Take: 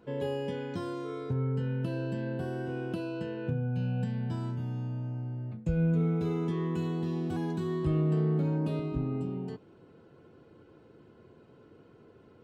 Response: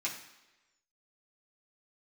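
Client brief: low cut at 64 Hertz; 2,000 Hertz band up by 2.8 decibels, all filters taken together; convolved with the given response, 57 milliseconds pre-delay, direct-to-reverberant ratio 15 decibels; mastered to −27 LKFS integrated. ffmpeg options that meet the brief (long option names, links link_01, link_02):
-filter_complex "[0:a]highpass=64,equalizer=frequency=2000:width_type=o:gain=4,asplit=2[link_01][link_02];[1:a]atrim=start_sample=2205,adelay=57[link_03];[link_02][link_03]afir=irnorm=-1:irlink=0,volume=-18.5dB[link_04];[link_01][link_04]amix=inputs=2:normalize=0,volume=5dB"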